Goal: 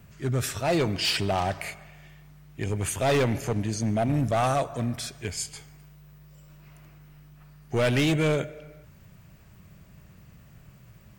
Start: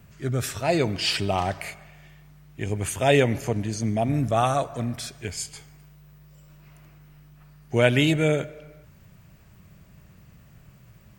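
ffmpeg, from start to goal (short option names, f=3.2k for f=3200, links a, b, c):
-af "volume=19.5dB,asoftclip=hard,volume=-19.5dB"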